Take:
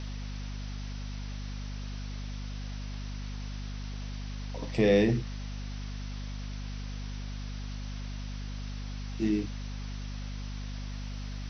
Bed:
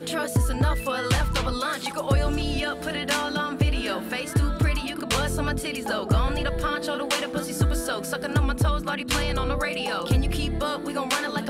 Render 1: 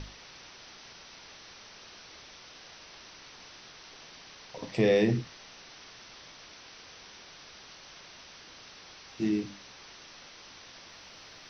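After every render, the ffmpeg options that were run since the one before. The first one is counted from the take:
-af "bandreject=f=50:t=h:w=6,bandreject=f=100:t=h:w=6,bandreject=f=150:t=h:w=6,bandreject=f=200:t=h:w=6,bandreject=f=250:t=h:w=6,bandreject=f=300:t=h:w=6"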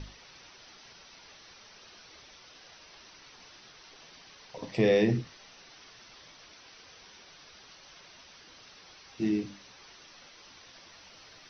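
-af "afftdn=nr=6:nf=-51"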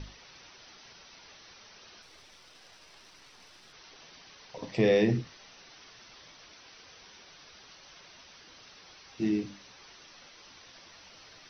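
-filter_complex "[0:a]asettb=1/sr,asplit=3[a][b][c];[a]atrim=end=2.024[d];[b]atrim=start=2.02:end=3.73,asetpts=PTS-STARTPTS,afade=t=in:d=0.004:c=qsin,afade=t=out:st=1.706:d=0.004:c=qsin,aeval=exprs='if(lt(val(0),0),0.447*val(0),val(0))':c=same[e];[c]atrim=start=3.726[f];[d][e]acrossfade=d=0.004:c1=hsin:c2=qsin[g];[g][f]acrossfade=d=0.004:c1=qsin:c2=hsin"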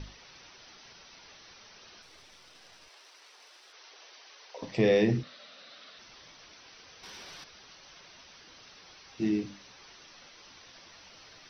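-filter_complex "[0:a]asettb=1/sr,asplit=3[a][b][c];[a]atrim=end=2.884[d];[b]atrim=start=2.88:end=4.62,asetpts=PTS-STARTPTS,afade=t=in:d=0.004:c=qsin,afade=t=out:st=1.736:d=0.004:c=qsin,highpass=f=390:w=0.5412,highpass=f=390:w=1.3066[e];[c]atrim=start=4.616[f];[d][e]acrossfade=d=0.004:c1=hsin:c2=qsin[g];[g][f]acrossfade=d=0.004:c1=qsin:c2=hsin,asettb=1/sr,asplit=3[h][i][j];[h]atrim=end=5.234[k];[i]atrim=start=5.23:end=5.99,asetpts=PTS-STARTPTS,afade=t=in:d=0.004:c=qsin,afade=t=out:st=0.756:d=0.004:c=qsin,highpass=220,equalizer=f=240:t=q:w=4:g=6,equalizer=f=370:t=q:w=4:g=-8,equalizer=f=580:t=q:w=4:g=10,equalizer=f=900:t=q:w=4:g=-8,equalizer=f=1.3k:t=q:w=4:g=6,equalizer=f=3.8k:t=q:w=4:g=7,lowpass=f=5.1k:w=0.5412,lowpass=f=5.1k:w=1.3066[l];[j]atrim=start=5.986[m];[k][l]acrossfade=d=0.004:c1=hsin:c2=qsin[n];[n][m]acrossfade=d=0.004:c1=qsin:c2=hsin,asettb=1/sr,asplit=3[o][p][q];[o]atrim=end=7.034[r];[p]atrim=start=7.03:end=7.44,asetpts=PTS-STARTPTS,afade=t=in:d=0.004:c=qsin,afade=t=out:st=0.406:d=0.004:c=qsin,aeval=exprs='0.00891*sin(PI/2*1.58*val(0)/0.00891)':c=same[s];[q]atrim=start=7.436[t];[r][s]acrossfade=d=0.004:c1=hsin:c2=qsin[u];[u][t]acrossfade=d=0.004:c1=qsin:c2=hsin"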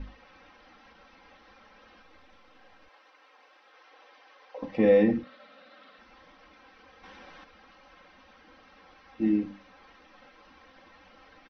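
-af "lowpass=1.8k,aecho=1:1:3.8:0.94"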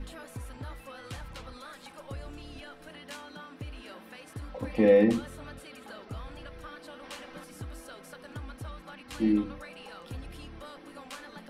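-filter_complex "[1:a]volume=-19dB[a];[0:a][a]amix=inputs=2:normalize=0"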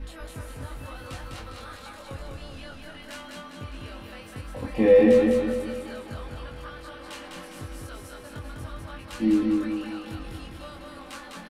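-filter_complex "[0:a]asplit=2[a][b];[b]adelay=22,volume=-2dB[c];[a][c]amix=inputs=2:normalize=0,aecho=1:1:203|406|609|812|1015|1218|1421:0.708|0.361|0.184|0.0939|0.0479|0.0244|0.0125"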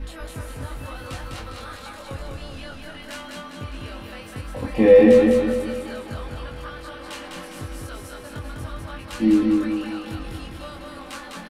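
-af "volume=4.5dB"

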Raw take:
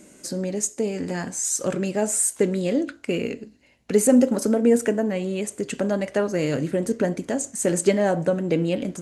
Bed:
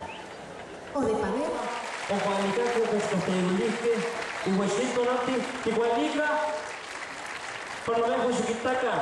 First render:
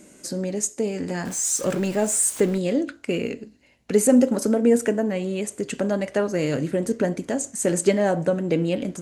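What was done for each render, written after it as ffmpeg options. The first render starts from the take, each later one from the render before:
-filter_complex "[0:a]asettb=1/sr,asplit=3[a][b][c];[a]atrim=end=1.254[d];[b]atrim=start=1.25:end=2.58,asetpts=PTS-STARTPTS,afade=t=in:d=0.004:c=qsin,afade=t=out:st=1.326:d=0.004:c=qsin,aeval=exprs='val(0)+0.5*0.0237*sgn(val(0))':c=same[e];[c]atrim=start=2.576[f];[d][e]acrossfade=d=0.004:c1=hsin:c2=qsin[g];[g][f]acrossfade=d=0.004:c1=qsin:c2=hsin"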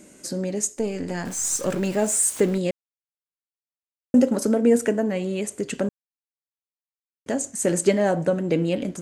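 -filter_complex "[0:a]asettb=1/sr,asplit=3[a][b][c];[a]atrim=end=0.764[d];[b]atrim=start=0.76:end=1.83,asetpts=PTS-STARTPTS,afade=t=in:d=0.004:c=qsin,afade=t=out:st=1.066:d=0.004:c=qsin,aeval=exprs='if(lt(val(0),0),0.708*val(0),val(0))':c=same[e];[c]atrim=start=1.826[f];[d][e]acrossfade=d=0.004:c1=hsin:c2=qsin[g];[g][f]acrossfade=d=0.004:c1=qsin:c2=hsin,asplit=5[h][i][j][k][l];[h]atrim=end=2.71,asetpts=PTS-STARTPTS,afade=t=out:st=2.706:d=0.004:c=hsin[m];[i]atrim=start=2.71:end=4.14,asetpts=PTS-STARTPTS,volume=0[n];[j]atrim=start=4.14:end=5.89,asetpts=PTS-STARTPTS,afade=t=in:d=0.004:c=hsin,afade=t=out:st=1.746:d=0.004:c=hsin[o];[k]atrim=start=5.89:end=7.26,asetpts=PTS-STARTPTS,volume=0[p];[l]atrim=start=7.26,asetpts=PTS-STARTPTS,afade=t=in:d=0.004:c=hsin[q];[m][n][o][p][q]concat=n=5:v=0:a=1"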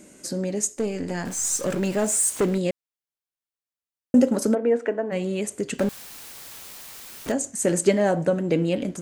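-filter_complex "[0:a]asettb=1/sr,asplit=3[a][b][c];[a]atrim=end=0.754[d];[b]atrim=start=0.75:end=2.56,asetpts=PTS-STARTPTS,afade=t=in:d=0.004:c=qsin,afade=t=out:st=1.806:d=0.004:c=qsin,volume=16.5dB,asoftclip=hard,volume=-16.5dB[e];[c]atrim=start=2.556[f];[d][e]acrossfade=d=0.004:c1=hsin:c2=qsin[g];[g][f]acrossfade=d=0.004:c1=qsin:c2=hsin,asplit=3[h][i][j];[h]afade=t=out:st=4.54:d=0.02[k];[i]highpass=390,lowpass=2.1k,afade=t=in:st=4.54:d=0.02,afade=t=out:st=5.11:d=0.02[l];[j]afade=t=in:st=5.11:d=0.02[m];[k][l][m]amix=inputs=3:normalize=0,asettb=1/sr,asplit=3[n][o][p];[n]atrim=end=5.794[q];[o]atrim=start=5.79:end=7.32,asetpts=PTS-STARTPTS,afade=t=in:d=0.004:c=qsin,afade=t=out:st=1.526:d=0.004:c=qsin,aeval=exprs='val(0)+0.5*0.0335*sgn(val(0))':c=same[r];[p]atrim=start=7.316[s];[q][r]acrossfade=d=0.004:c1=hsin:c2=qsin[t];[t][s]acrossfade=d=0.004:c1=qsin:c2=hsin"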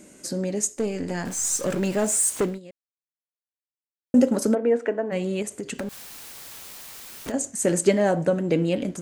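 -filter_complex "[0:a]asettb=1/sr,asplit=3[a][b][c];[a]atrim=end=5.424[d];[b]atrim=start=5.42:end=7.34,asetpts=PTS-STARTPTS,afade=t=in:d=0.004:c=qsin,afade=t=out:st=1.916:d=0.004:c=qsin,acompressor=threshold=-27dB:ratio=6:attack=3.2:release=140:knee=1:detection=peak[e];[c]atrim=start=7.336[f];[d][e]acrossfade=d=0.004:c1=hsin:c2=qsin[g];[g][f]acrossfade=d=0.004:c1=qsin:c2=hsin,asplit=3[h][i][j];[h]atrim=end=2.6,asetpts=PTS-STARTPTS,afade=t=out:st=2.39:d=0.21:silence=0.105925[k];[i]atrim=start=2.6:end=3.98,asetpts=PTS-STARTPTS,volume=-19.5dB[l];[j]atrim=start=3.98,asetpts=PTS-STARTPTS,afade=t=in:d=0.21:silence=0.105925[m];[k][l][m]concat=n=3:v=0:a=1"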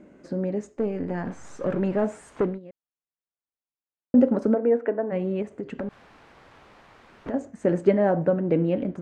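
-af "lowpass=1.5k"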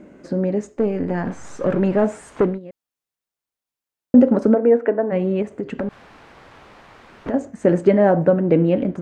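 -af "volume=6.5dB,alimiter=limit=-3dB:level=0:latency=1"

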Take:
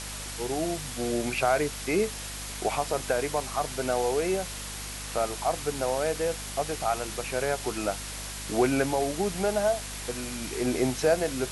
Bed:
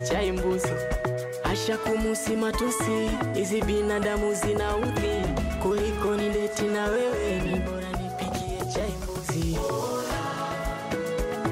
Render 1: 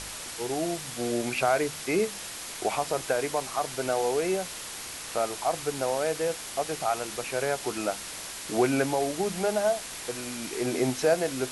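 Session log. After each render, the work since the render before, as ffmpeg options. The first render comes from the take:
-af "bandreject=f=50:t=h:w=4,bandreject=f=100:t=h:w=4,bandreject=f=150:t=h:w=4,bandreject=f=200:t=h:w=4,bandreject=f=250:t=h:w=4"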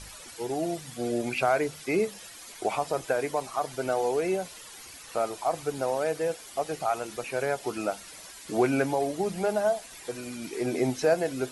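-af "afftdn=nr=12:nf=-39"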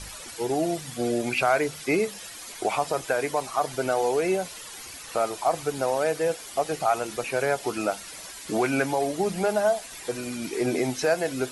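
-filter_complex "[0:a]acrossover=split=880[a][b];[a]alimiter=limit=-22dB:level=0:latency=1:release=396[c];[c][b]amix=inputs=2:normalize=0,acontrast=24"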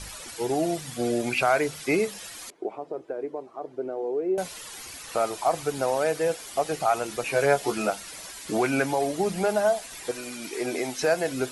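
-filter_complex "[0:a]asettb=1/sr,asplit=3[a][b][c];[a]atrim=end=2.504[d];[b]atrim=start=2.5:end=4.38,asetpts=PTS-STARTPTS,afade=t=in:d=0.004:c=qsin,afade=t=out:st=1.876:d=0.004:c=qsin,bandpass=f=360:t=q:w=2.5[e];[c]atrim=start=4.376[f];[d][e]acrossfade=d=0.004:c1=hsin:c2=qsin[g];[g][f]acrossfade=d=0.004:c1=qsin:c2=hsin,asettb=1/sr,asplit=3[h][i][j];[h]atrim=end=7.244[k];[i]atrim=start=7.24:end=7.9,asetpts=PTS-STARTPTS,afade=t=in:d=0.004:c=qsin,afade=t=out:st=0.656:d=0.004:c=qsin,asplit=2[l][m];[m]adelay=14,volume=-3dB[n];[l][n]amix=inputs=2:normalize=0,atrim=end_sample=29106[o];[j]atrim=start=7.896[p];[k][o]acrossfade=d=0.004:c1=hsin:c2=qsin[q];[q][p]acrossfade=d=0.004:c1=qsin:c2=hsin,asettb=1/sr,asplit=3[r][s][t];[r]atrim=end=10.114[u];[s]atrim=start=10.11:end=11,asetpts=PTS-STARTPTS,afade=t=in:d=0.004:c=qsin,afade=t=out:st=0.886:d=0.004:c=qsin,equalizer=f=90:t=o:w=3:g=-12.5[v];[t]atrim=start=10.996[w];[u][v]acrossfade=d=0.004:c1=hsin:c2=qsin[x];[x][w]acrossfade=d=0.004:c1=qsin:c2=hsin"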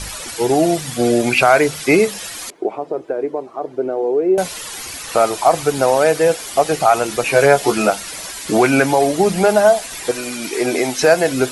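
-af "volume=11dB,alimiter=limit=-1dB:level=0:latency=1"

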